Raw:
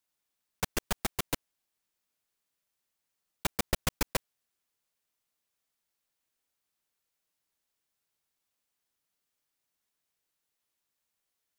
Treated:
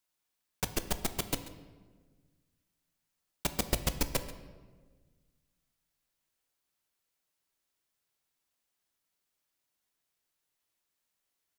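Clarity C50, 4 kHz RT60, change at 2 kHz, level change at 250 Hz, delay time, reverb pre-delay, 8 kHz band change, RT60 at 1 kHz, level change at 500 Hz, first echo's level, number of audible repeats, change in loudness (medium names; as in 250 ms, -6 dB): 11.0 dB, 0.90 s, -3.5 dB, +0.5 dB, 136 ms, 3 ms, 0.0 dB, 1.3 s, -0.5 dB, -17.0 dB, 1, -0.5 dB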